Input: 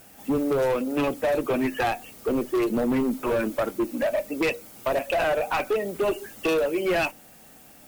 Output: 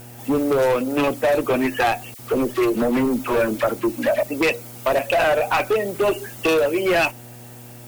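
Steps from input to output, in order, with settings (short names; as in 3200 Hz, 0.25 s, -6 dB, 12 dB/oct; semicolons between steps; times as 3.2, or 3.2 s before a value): low shelf 350 Hz -4.5 dB; buzz 120 Hz, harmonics 8, -49 dBFS -7 dB/oct; 2.14–4.23 dispersion lows, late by 51 ms, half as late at 1500 Hz; gain +6.5 dB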